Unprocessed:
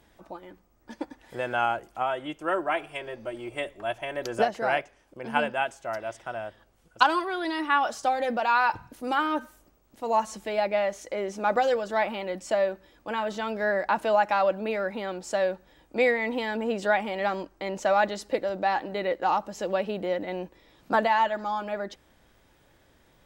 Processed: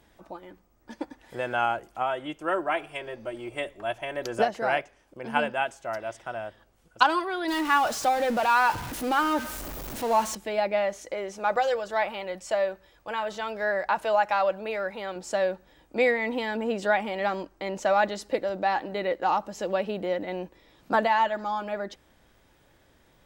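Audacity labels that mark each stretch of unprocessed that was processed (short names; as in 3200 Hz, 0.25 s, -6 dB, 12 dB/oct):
7.480000	10.350000	zero-crossing step of -31 dBFS
11.140000	15.160000	bell 260 Hz -12 dB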